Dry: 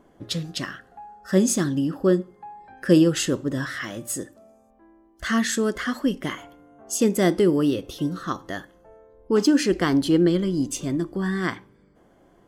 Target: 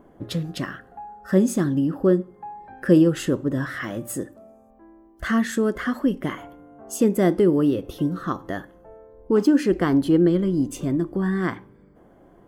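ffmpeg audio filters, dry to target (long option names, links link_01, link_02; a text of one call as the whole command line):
ffmpeg -i in.wav -filter_complex "[0:a]equalizer=frequency=5500:width_type=o:width=2.4:gain=-12.5,asplit=2[link_01][link_02];[link_02]acompressor=threshold=-30dB:ratio=6,volume=-2dB[link_03];[link_01][link_03]amix=inputs=2:normalize=0" out.wav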